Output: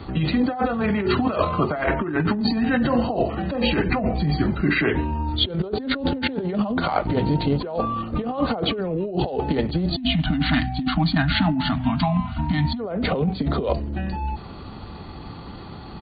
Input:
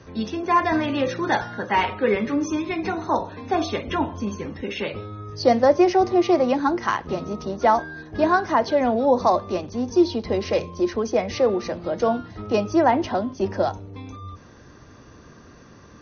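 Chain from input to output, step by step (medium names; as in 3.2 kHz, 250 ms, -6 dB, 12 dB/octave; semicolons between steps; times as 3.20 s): spectral selection erased 9.95–12.80 s, 410–840 Hz; pitch shift -5.5 st; compressor with a negative ratio -28 dBFS, ratio -1; trim +5.5 dB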